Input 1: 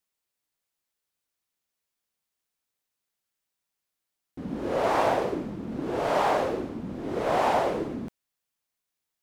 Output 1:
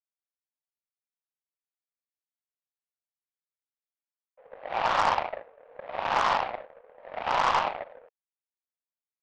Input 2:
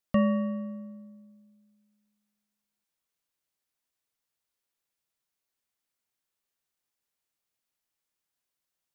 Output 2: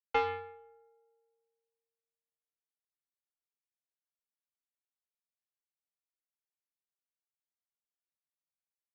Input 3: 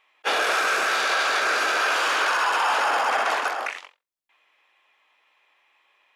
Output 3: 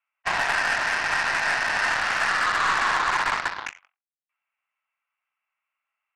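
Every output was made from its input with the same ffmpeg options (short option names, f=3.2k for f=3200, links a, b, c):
-af "highpass=f=240:t=q:w=0.5412,highpass=f=240:t=q:w=1.307,lowpass=f=2.4k:t=q:w=0.5176,lowpass=f=2.4k:t=q:w=0.7071,lowpass=f=2.4k:t=q:w=1.932,afreqshift=250,aeval=exprs='0.251*(cos(1*acos(clip(val(0)/0.251,-1,1)))-cos(1*PI/2))+0.0355*(cos(2*acos(clip(val(0)/0.251,-1,1)))-cos(2*PI/2))+0.0316*(cos(7*acos(clip(val(0)/0.251,-1,1)))-cos(7*PI/2))+0.00282*(cos(8*acos(clip(val(0)/0.251,-1,1)))-cos(8*PI/2))':c=same"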